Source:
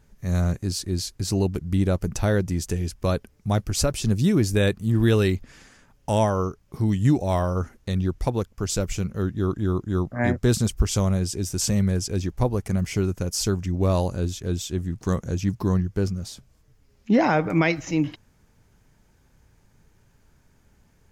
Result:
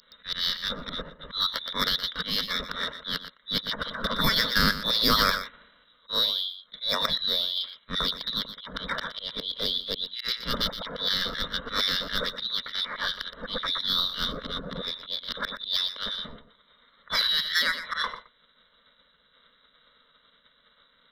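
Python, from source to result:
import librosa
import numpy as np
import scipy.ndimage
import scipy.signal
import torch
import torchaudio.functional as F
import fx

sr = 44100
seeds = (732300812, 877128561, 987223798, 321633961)

p1 = fx.auto_swell(x, sr, attack_ms=108.0)
p2 = fx.freq_invert(p1, sr, carrier_hz=3700)
p3 = 10.0 ** (-16.5 / 20.0) * np.tanh(p2 / 10.0 ** (-16.5 / 20.0))
p4 = p2 + (p3 * 10.0 ** (-12.0 / 20.0))
p5 = p4 + 10.0 ** (-12.0 / 20.0) * np.pad(p4, (int(120 * sr / 1000.0), 0))[:len(p4)]
p6 = fx.formant_shift(p5, sr, semitones=5)
y = fx.fixed_phaser(p6, sr, hz=520.0, stages=8)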